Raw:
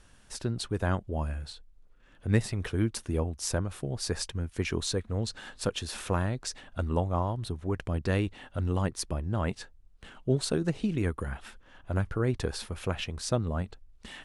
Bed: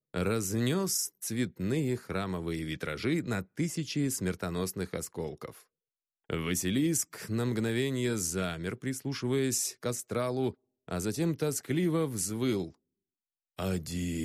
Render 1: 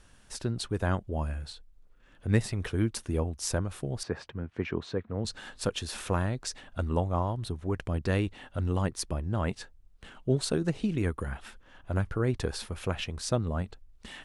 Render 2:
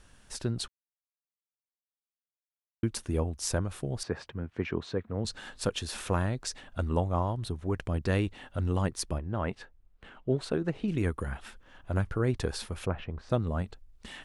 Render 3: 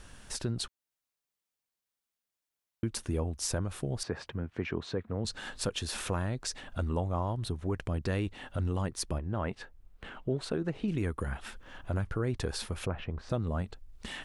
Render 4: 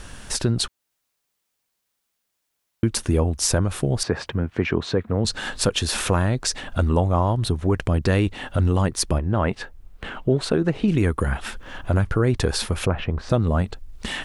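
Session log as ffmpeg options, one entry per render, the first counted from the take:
ffmpeg -i in.wav -filter_complex "[0:a]asettb=1/sr,asplit=3[link_01][link_02][link_03];[link_01]atrim=end=4.034[link_04];[link_02]atrim=start=4.03:end=5.25,asetpts=PTS-STARTPTS,afade=type=in:duration=0.004:curve=qsin,afade=type=out:start_time=1.216:duration=0.004:curve=qsin,highpass=110,lowpass=2100[link_05];[link_03]atrim=start=5.246[link_06];[link_04][link_05]acrossfade=duration=0.004:curve1=hsin:curve2=qsin[link_07];[link_07][link_06]acrossfade=duration=0.004:curve1=qsin:curve2=hsin" out.wav
ffmpeg -i in.wav -filter_complex "[0:a]asettb=1/sr,asplit=3[link_01][link_02][link_03];[link_01]atrim=end=9.184[link_04];[link_02]atrim=start=9.18:end=10.88,asetpts=PTS-STARTPTS,afade=type=in:duration=0.004:curve=qsin,afade=type=out:start_time=1.696:duration=0.004:curve=qsin,bass=frequency=250:gain=-4,treble=frequency=4000:gain=-14[link_05];[link_03]atrim=start=10.876[link_06];[link_04][link_05]acrossfade=duration=0.004:curve1=hsin:curve2=qsin[link_07];[link_07][link_06]acrossfade=duration=0.004:curve1=qsin:curve2=hsin,asplit=3[link_08][link_09][link_10];[link_08]afade=type=out:start_time=12.85:duration=0.02[link_11];[link_09]lowpass=1500,afade=type=in:start_time=12.85:duration=0.02,afade=type=out:start_time=13.29:duration=0.02[link_12];[link_10]afade=type=in:start_time=13.29:duration=0.02[link_13];[link_11][link_12][link_13]amix=inputs=3:normalize=0,asplit=3[link_14][link_15][link_16];[link_14]atrim=end=0.68,asetpts=PTS-STARTPTS,afade=type=out:start_time=0.676:duration=0.004:curve=hsin[link_17];[link_15]atrim=start=0.68:end=2.83,asetpts=PTS-STARTPTS,volume=0[link_18];[link_16]atrim=start=2.83,asetpts=PTS-STARTPTS,afade=type=in:duration=0.004:curve=hsin[link_19];[link_17][link_18][link_19]concat=n=3:v=0:a=1" out.wav
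ffmpeg -i in.wav -filter_complex "[0:a]asplit=2[link_01][link_02];[link_02]alimiter=limit=-23dB:level=0:latency=1:release=20,volume=1dB[link_03];[link_01][link_03]amix=inputs=2:normalize=0,acompressor=threshold=-42dB:ratio=1.5" out.wav
ffmpeg -i in.wav -af "volume=12dB" out.wav

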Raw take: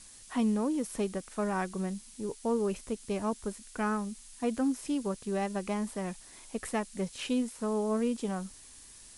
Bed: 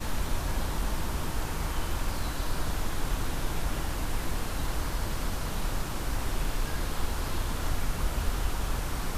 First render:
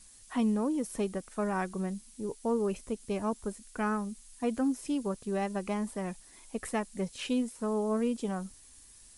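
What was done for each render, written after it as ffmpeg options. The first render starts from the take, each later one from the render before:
ffmpeg -i in.wav -af "afftdn=noise_reduction=6:noise_floor=-53" out.wav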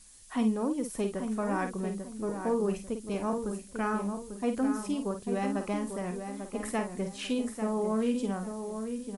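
ffmpeg -i in.wav -filter_complex "[0:a]asplit=2[link_01][link_02];[link_02]adelay=50,volume=-7.5dB[link_03];[link_01][link_03]amix=inputs=2:normalize=0,asplit=2[link_04][link_05];[link_05]adelay=844,lowpass=frequency=1900:poles=1,volume=-7dB,asplit=2[link_06][link_07];[link_07]adelay=844,lowpass=frequency=1900:poles=1,volume=0.31,asplit=2[link_08][link_09];[link_09]adelay=844,lowpass=frequency=1900:poles=1,volume=0.31,asplit=2[link_10][link_11];[link_11]adelay=844,lowpass=frequency=1900:poles=1,volume=0.31[link_12];[link_06][link_08][link_10][link_12]amix=inputs=4:normalize=0[link_13];[link_04][link_13]amix=inputs=2:normalize=0" out.wav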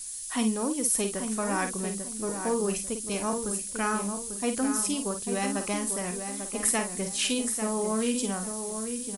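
ffmpeg -i in.wav -af "crystalizer=i=6:c=0" out.wav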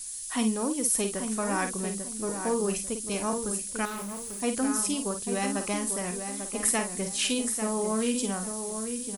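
ffmpeg -i in.wav -filter_complex "[0:a]asettb=1/sr,asplit=3[link_01][link_02][link_03];[link_01]atrim=end=3.854[link_04];[link_02]atrim=start=3.85:end=4.41,asetpts=PTS-STARTPTS,afade=type=in:duration=0.004:curve=qsin,afade=type=out:start_time=0.556:duration=0.004:curve=qsin,asoftclip=type=hard:threshold=-34dB[link_05];[link_03]atrim=start=4.406[link_06];[link_04][link_05]acrossfade=duration=0.004:curve1=hsin:curve2=qsin[link_07];[link_07][link_06]acrossfade=duration=0.004:curve1=qsin:curve2=hsin" out.wav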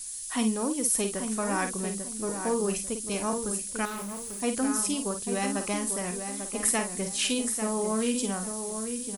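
ffmpeg -i in.wav -af anull out.wav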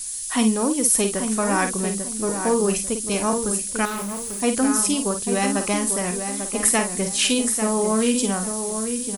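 ffmpeg -i in.wav -af "volume=7.5dB,alimiter=limit=-3dB:level=0:latency=1" out.wav

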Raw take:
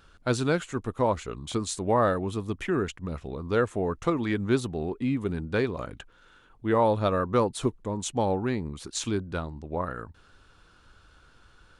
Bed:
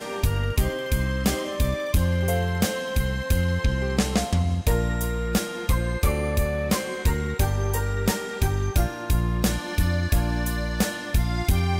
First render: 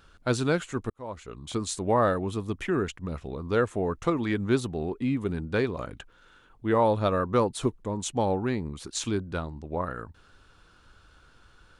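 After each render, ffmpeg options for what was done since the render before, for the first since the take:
ffmpeg -i in.wav -filter_complex "[0:a]asplit=2[link_01][link_02];[link_01]atrim=end=0.9,asetpts=PTS-STARTPTS,afade=type=out:start_time=0.896:duration=0.004:curve=hsin[link_03];[link_02]atrim=start=0.9,asetpts=PTS-STARTPTS,afade=type=in:duration=0.77[link_04];[link_03][link_04]concat=n=2:v=0:a=1" out.wav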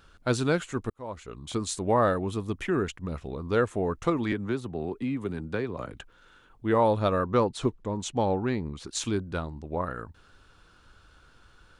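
ffmpeg -i in.wav -filter_complex "[0:a]asettb=1/sr,asplit=3[link_01][link_02][link_03];[link_01]atrim=end=4.324[link_04];[link_02]atrim=start=4.32:end=5.94,asetpts=PTS-STARTPTS,afade=type=in:duration=0.004:curve=qsin,afade=type=out:start_time=1.616:duration=0.004:curve=qsin,acrossover=split=90|270|2700[link_05][link_06][link_07][link_08];[link_05]acompressor=threshold=-51dB:ratio=3[link_09];[link_06]acompressor=threshold=-35dB:ratio=3[link_10];[link_07]acompressor=threshold=-30dB:ratio=3[link_11];[link_08]acompressor=threshold=-55dB:ratio=3[link_12];[link_09][link_10][link_11][link_12]amix=inputs=4:normalize=0[link_13];[link_03]atrim=start=5.936[link_14];[link_04][link_13]acrossfade=duration=0.004:curve1=hsin:curve2=qsin[link_15];[link_15][link_14]acrossfade=duration=0.004:curve1=qsin:curve2=hsin,asettb=1/sr,asplit=3[link_16][link_17][link_18];[link_16]atrim=end=7.254[link_19];[link_17]atrim=start=7.25:end=8.89,asetpts=PTS-STARTPTS,afade=type=in:duration=0.004:curve=qsin,afade=type=out:start_time=1.636:duration=0.004:curve=qsin,lowpass=6700[link_20];[link_18]atrim=start=8.886[link_21];[link_19][link_20]acrossfade=duration=0.004:curve1=hsin:curve2=qsin[link_22];[link_22][link_21]acrossfade=duration=0.004:curve1=qsin:curve2=hsin" out.wav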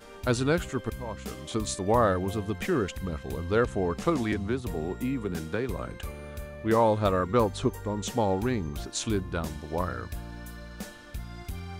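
ffmpeg -i in.wav -i bed.wav -filter_complex "[1:a]volume=-16dB[link_01];[0:a][link_01]amix=inputs=2:normalize=0" out.wav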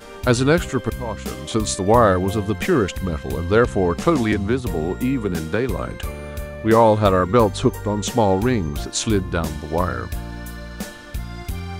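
ffmpeg -i in.wav -af "volume=9dB,alimiter=limit=-3dB:level=0:latency=1" out.wav

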